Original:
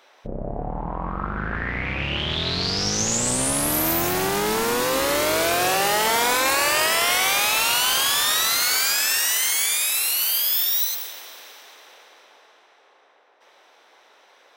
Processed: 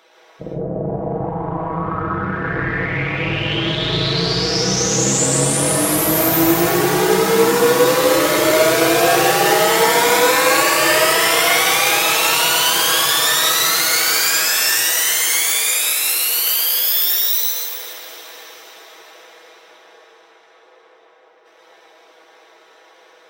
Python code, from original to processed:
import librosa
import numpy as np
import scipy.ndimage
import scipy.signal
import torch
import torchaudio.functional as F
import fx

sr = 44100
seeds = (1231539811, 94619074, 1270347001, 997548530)

y = fx.stretch_grains(x, sr, factor=1.6, grain_ms=33.0)
y = scipy.signal.sosfilt(scipy.signal.butter(2, 71.0, 'highpass', fs=sr, output='sos'), y)
y = fx.peak_eq(y, sr, hz=410.0, db=4.5, octaves=0.82)
y = fx.rev_plate(y, sr, seeds[0], rt60_s=0.54, hf_ratio=0.6, predelay_ms=110, drr_db=-2.5)
y = F.gain(torch.from_numpy(y), 2.5).numpy()